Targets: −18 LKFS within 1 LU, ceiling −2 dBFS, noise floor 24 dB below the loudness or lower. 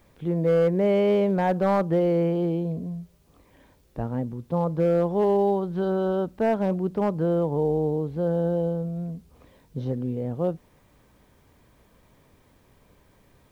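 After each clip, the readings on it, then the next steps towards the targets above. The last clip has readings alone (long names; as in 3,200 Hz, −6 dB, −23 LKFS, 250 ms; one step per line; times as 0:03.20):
share of clipped samples 0.8%; peaks flattened at −15.5 dBFS; integrated loudness −25.0 LKFS; sample peak −15.5 dBFS; target loudness −18.0 LKFS
→ clipped peaks rebuilt −15.5 dBFS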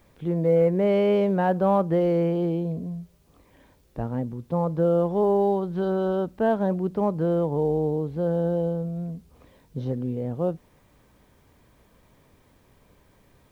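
share of clipped samples 0.0%; integrated loudness −24.5 LKFS; sample peak −10.5 dBFS; target loudness −18.0 LKFS
→ level +6.5 dB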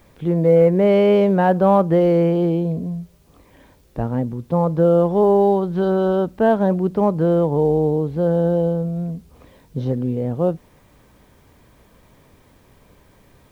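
integrated loudness −18.0 LKFS; sample peak −4.0 dBFS; background noise floor −53 dBFS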